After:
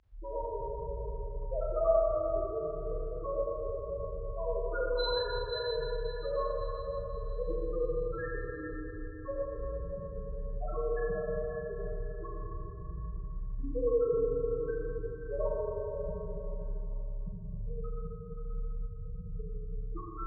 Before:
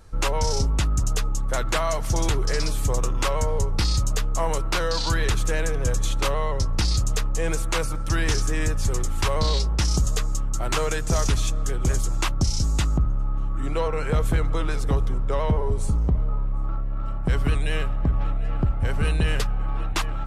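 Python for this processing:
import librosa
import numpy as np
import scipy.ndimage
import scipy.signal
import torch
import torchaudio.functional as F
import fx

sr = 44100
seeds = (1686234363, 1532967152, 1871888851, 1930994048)

y = fx.over_compress(x, sr, threshold_db=-23.0, ratio=-0.5)
y = fx.spec_topn(y, sr, count=4)
y = fx.highpass(y, sr, hz=660.0, slope=6)
y = fx.rev_schroeder(y, sr, rt60_s=3.4, comb_ms=29, drr_db=-5.5)
y = fx.dynamic_eq(y, sr, hz=990.0, q=4.8, threshold_db=-53.0, ratio=4.0, max_db=-6)
y = scipy.signal.sosfilt(scipy.signal.butter(2, 4500.0, 'lowpass', fs=sr, output='sos'), y)
y = y + 10.0 ** (-10.0 / 20.0) * np.pad(y, (int(529 * sr / 1000.0), 0))[:len(y)]
y = y * librosa.db_to_amplitude(1.5)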